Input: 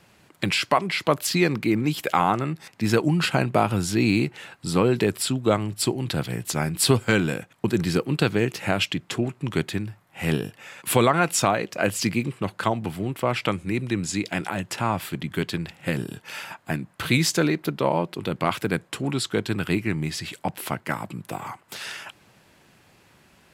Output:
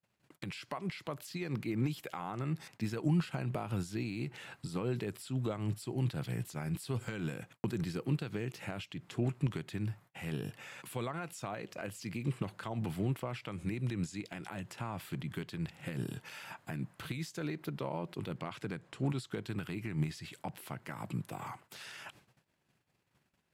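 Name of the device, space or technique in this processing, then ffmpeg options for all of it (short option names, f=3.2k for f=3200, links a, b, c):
de-esser from a sidechain: -filter_complex "[0:a]asplit=2[a][b];[b]highpass=f=4.4k:p=1,apad=whole_len=1037720[c];[a][c]sidechaincompress=threshold=-47dB:ratio=4:attack=3.3:release=86,agate=range=-36dB:threshold=-53dB:ratio=16:detection=peak,asettb=1/sr,asplit=3[d][e][f];[d]atrim=end=18.384[g];[e]atrim=start=18.38:end=19.1,asetpts=PTS-STARTPTS,afade=t=in:d=0.004:c=qsin,afade=t=out:st=0.716:d=0.004:c=qsin,lowpass=8.4k[h];[f]atrim=start=19.096[i];[g][h]acrossfade=d=0.004:c1=hsin:c2=qsin[j];[j][i]acrossfade=d=0.004:c1=qsin:c2=hsin,equalizer=f=130:t=o:w=0.65:g=5,volume=-4dB"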